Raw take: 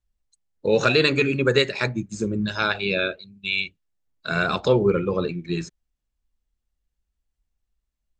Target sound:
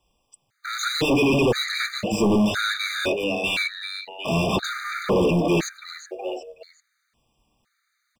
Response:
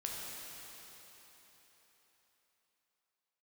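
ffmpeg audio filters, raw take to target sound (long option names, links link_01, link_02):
-filter_complex "[0:a]acrossover=split=420|3000[link_01][link_02][link_03];[link_02]acompressor=threshold=-37dB:ratio=6[link_04];[link_01][link_04][link_03]amix=inputs=3:normalize=0,acrusher=bits=7:mode=log:mix=0:aa=0.000001,asplit=4[link_05][link_06][link_07][link_08];[link_06]adelay=372,afreqshift=99,volume=-17dB[link_09];[link_07]adelay=744,afreqshift=198,volume=-25dB[link_10];[link_08]adelay=1116,afreqshift=297,volume=-32.9dB[link_11];[link_05][link_09][link_10][link_11]amix=inputs=4:normalize=0,asplit=2[link_12][link_13];[link_13]highpass=frequency=720:poles=1,volume=37dB,asoftclip=type=tanh:threshold=-7.5dB[link_14];[link_12][link_14]amix=inputs=2:normalize=0,lowpass=frequency=2200:poles=1,volume=-6dB,afftfilt=real='re*gt(sin(2*PI*0.98*pts/sr)*(1-2*mod(floor(b*sr/1024/1200),2)),0)':imag='im*gt(sin(2*PI*0.98*pts/sr)*(1-2*mod(floor(b*sr/1024/1200),2)),0)':win_size=1024:overlap=0.75,volume=-3dB"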